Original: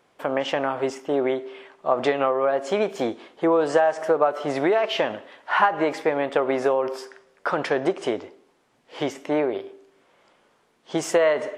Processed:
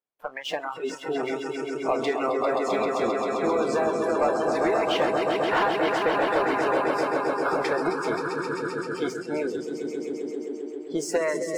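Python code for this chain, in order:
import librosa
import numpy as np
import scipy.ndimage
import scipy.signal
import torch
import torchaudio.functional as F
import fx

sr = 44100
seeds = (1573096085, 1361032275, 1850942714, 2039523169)

y = fx.echo_swell(x, sr, ms=132, loudest=5, wet_db=-6.0)
y = fx.hpss(y, sr, part='harmonic', gain_db=-8)
y = fx.leveller(y, sr, passes=2)
y = fx.noise_reduce_blind(y, sr, reduce_db=19)
y = F.gain(torch.from_numpy(y), -8.0).numpy()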